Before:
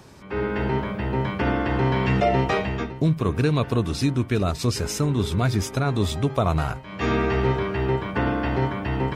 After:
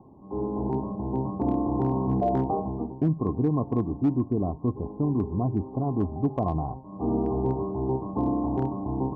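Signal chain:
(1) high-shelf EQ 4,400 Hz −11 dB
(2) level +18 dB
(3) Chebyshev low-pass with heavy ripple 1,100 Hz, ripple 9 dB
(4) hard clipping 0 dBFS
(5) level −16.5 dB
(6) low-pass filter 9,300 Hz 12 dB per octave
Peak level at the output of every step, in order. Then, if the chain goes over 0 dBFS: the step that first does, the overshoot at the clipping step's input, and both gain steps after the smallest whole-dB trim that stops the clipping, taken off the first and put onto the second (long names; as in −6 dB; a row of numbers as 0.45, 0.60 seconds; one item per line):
−9.5, +8.5, +3.5, 0.0, −16.5, −16.5 dBFS
step 2, 3.5 dB
step 2 +14 dB, step 5 −12.5 dB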